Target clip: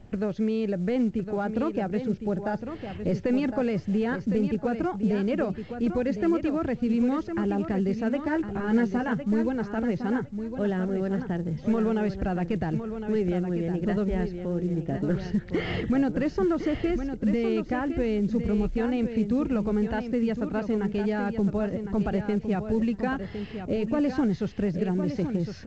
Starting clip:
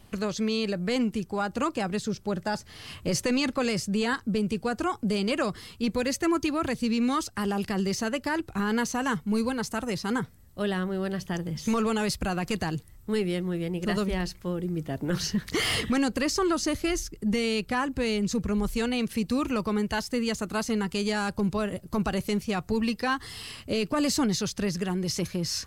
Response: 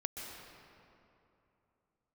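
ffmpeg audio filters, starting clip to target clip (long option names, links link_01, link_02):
-filter_complex "[0:a]lowpass=1400,equalizer=frequency=1100:width_type=o:width=0.49:gain=-11.5,asplit=2[link_01][link_02];[link_02]acompressor=threshold=-36dB:ratio=12,volume=-1dB[link_03];[link_01][link_03]amix=inputs=2:normalize=0,asettb=1/sr,asplit=3[link_04][link_05][link_06];[link_04]atrim=end=8.224[link_07];[link_05]atrim=start=8.22:end=9.13,asetpts=PTS-STARTPTS,afade=type=in:duration=0.004:curve=qsin,afade=type=out:start_time=0.906:duration=0.004:curve=qsin,asplit=2[link_08][link_09];[link_09]adelay=13,volume=-4dB[link_10];[link_08][link_10]amix=inputs=2:normalize=0,atrim=end_sample=40131[link_11];[link_06]atrim=start=9.126[link_12];[link_07][link_11]acrossfade=duration=0.004:curve1=hsin:curve2=qsin[link_13];[link_13][link_12]acrossfade=duration=0.004:curve1=qsin:curve2=hsin,aecho=1:1:1059|2118|3177:0.376|0.0639|0.0109" -ar 16000 -c:a pcm_alaw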